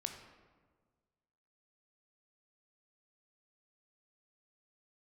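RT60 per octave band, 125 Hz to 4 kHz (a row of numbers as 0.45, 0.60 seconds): 1.9, 1.7, 1.6, 1.4, 1.1, 0.80 seconds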